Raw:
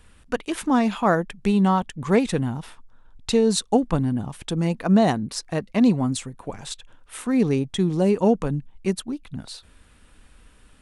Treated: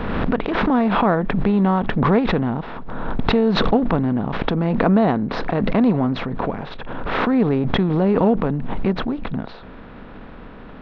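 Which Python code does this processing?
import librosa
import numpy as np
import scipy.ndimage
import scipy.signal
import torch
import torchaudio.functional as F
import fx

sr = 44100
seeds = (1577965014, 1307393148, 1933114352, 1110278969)

y = fx.bin_compress(x, sr, power=0.6)
y = scipy.ndimage.gaussian_filter1d(y, 3.2, mode='constant')
y = fx.pre_swell(y, sr, db_per_s=26.0)
y = y * 10.0 ** (-1.0 / 20.0)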